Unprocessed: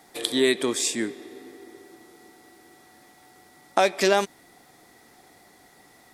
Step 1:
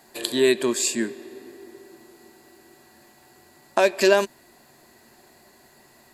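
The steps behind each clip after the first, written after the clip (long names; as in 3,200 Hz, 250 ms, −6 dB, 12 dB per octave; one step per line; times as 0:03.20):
EQ curve with evenly spaced ripples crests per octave 1.4, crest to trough 9 dB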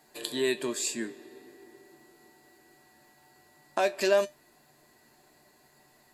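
tuned comb filter 150 Hz, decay 0.18 s, harmonics all, mix 70%
level −1.5 dB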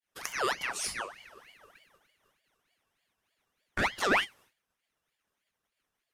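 downward expander −49 dBFS
pitch vibrato 0.6 Hz 42 cents
ring modulator whose carrier an LFO sweeps 1,700 Hz, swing 55%, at 3.3 Hz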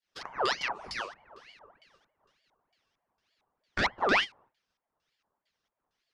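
auto-filter low-pass square 2.2 Hz 920–4,900 Hz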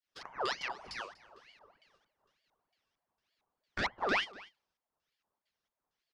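single-tap delay 243 ms −20.5 dB
level −6 dB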